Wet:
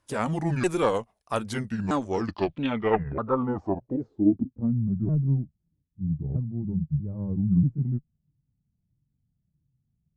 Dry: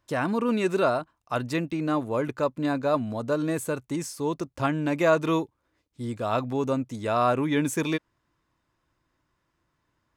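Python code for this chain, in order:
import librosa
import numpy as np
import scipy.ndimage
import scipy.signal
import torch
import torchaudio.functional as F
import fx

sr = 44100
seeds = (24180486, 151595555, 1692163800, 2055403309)

y = fx.pitch_ramps(x, sr, semitones=-9.0, every_ms=636)
y = fx.cheby_harmonics(y, sr, harmonics=(2,), levels_db=(-11,), full_scale_db=-10.0)
y = fx.filter_sweep_lowpass(y, sr, from_hz=10000.0, to_hz=150.0, start_s=1.73, end_s=4.86, q=4.2)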